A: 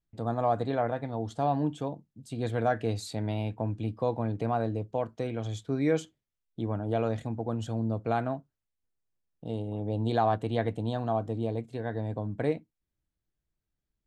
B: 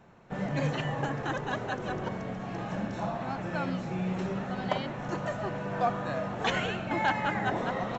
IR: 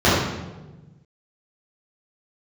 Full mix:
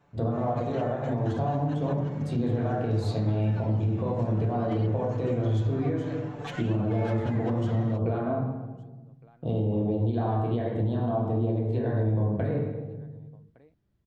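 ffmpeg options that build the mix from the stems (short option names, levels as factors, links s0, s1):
-filter_complex "[0:a]bass=f=250:g=0,treble=f=4000:g=-8,acompressor=threshold=0.0224:ratio=6,volume=1.41,asplit=3[s0][s1][s2];[s1]volume=0.112[s3];[s2]volume=0.0631[s4];[1:a]asoftclip=type=tanh:threshold=0.0596,aecho=1:1:6.9:0.98,volume=0.316[s5];[2:a]atrim=start_sample=2205[s6];[s3][s6]afir=irnorm=-1:irlink=0[s7];[s4]aecho=0:1:1162:1[s8];[s0][s5][s7][s8]amix=inputs=4:normalize=0,alimiter=limit=0.119:level=0:latency=1:release=215"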